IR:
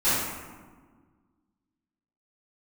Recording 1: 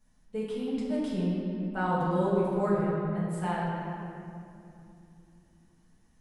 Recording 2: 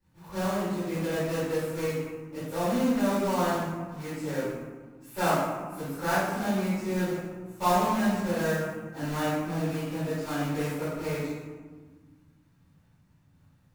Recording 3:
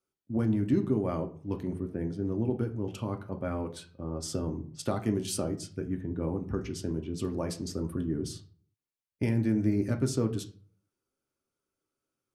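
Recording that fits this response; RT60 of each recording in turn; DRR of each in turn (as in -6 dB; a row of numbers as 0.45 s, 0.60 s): 2; 2.8 s, 1.5 s, 0.45 s; -8.5 dB, -17.5 dB, 4.0 dB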